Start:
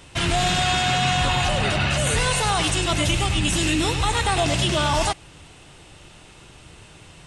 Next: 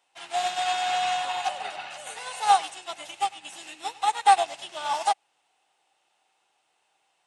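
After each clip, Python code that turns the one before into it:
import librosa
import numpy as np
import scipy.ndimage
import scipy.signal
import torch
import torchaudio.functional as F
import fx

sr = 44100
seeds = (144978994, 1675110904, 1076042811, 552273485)

y = scipy.signal.sosfilt(scipy.signal.butter(2, 600.0, 'highpass', fs=sr, output='sos'), x)
y = fx.peak_eq(y, sr, hz=790.0, db=12.5, octaves=0.32)
y = fx.upward_expand(y, sr, threshold_db=-28.0, expansion=2.5)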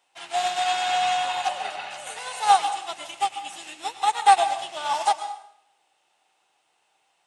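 y = fx.rev_plate(x, sr, seeds[0], rt60_s=0.69, hf_ratio=0.9, predelay_ms=105, drr_db=10.0)
y = F.gain(torch.from_numpy(y), 2.0).numpy()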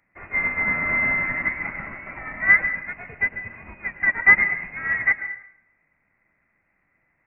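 y = fx.freq_invert(x, sr, carrier_hz=2800)
y = F.gain(torch.from_numpy(y), 1.5).numpy()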